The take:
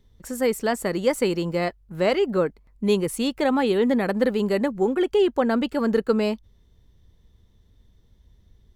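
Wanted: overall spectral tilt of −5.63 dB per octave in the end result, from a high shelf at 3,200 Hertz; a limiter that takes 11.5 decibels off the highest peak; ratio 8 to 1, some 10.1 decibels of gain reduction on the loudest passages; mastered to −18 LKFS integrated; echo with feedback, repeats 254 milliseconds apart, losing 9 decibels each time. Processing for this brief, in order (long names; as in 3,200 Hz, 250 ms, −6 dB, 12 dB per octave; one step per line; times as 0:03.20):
high-shelf EQ 3,200 Hz −4 dB
downward compressor 8 to 1, threshold −26 dBFS
brickwall limiter −27.5 dBFS
repeating echo 254 ms, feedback 35%, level −9 dB
level +17.5 dB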